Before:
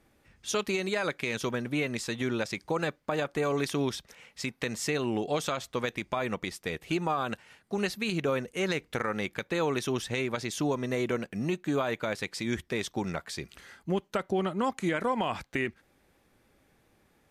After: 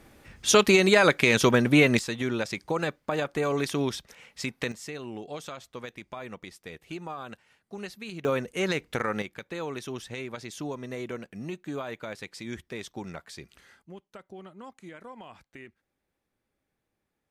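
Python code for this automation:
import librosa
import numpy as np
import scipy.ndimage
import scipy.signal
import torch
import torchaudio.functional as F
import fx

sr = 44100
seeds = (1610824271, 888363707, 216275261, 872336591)

y = fx.gain(x, sr, db=fx.steps((0.0, 11.0), (1.99, 1.5), (4.72, -8.5), (8.25, 2.0), (9.22, -6.0), (13.82, -16.0)))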